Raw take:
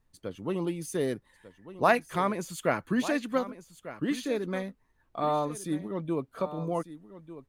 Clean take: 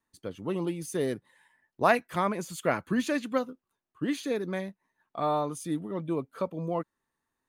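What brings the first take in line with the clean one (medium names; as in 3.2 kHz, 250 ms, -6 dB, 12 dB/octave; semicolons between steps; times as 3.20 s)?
expander -57 dBFS, range -21 dB; inverse comb 1196 ms -14.5 dB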